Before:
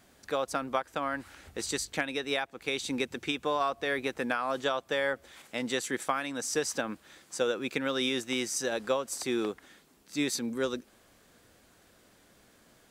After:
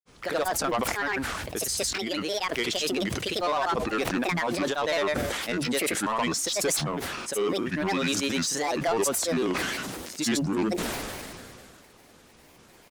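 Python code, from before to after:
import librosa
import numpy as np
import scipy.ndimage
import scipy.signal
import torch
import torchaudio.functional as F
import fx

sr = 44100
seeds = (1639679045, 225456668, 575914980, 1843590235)

y = fx.granulator(x, sr, seeds[0], grain_ms=100.0, per_s=20.0, spray_ms=100.0, spread_st=7)
y = 10.0 ** (-28.0 / 20.0) * np.tanh(y / 10.0 ** (-28.0 / 20.0))
y = fx.sustainer(y, sr, db_per_s=24.0)
y = F.gain(torch.from_numpy(y), 7.5).numpy()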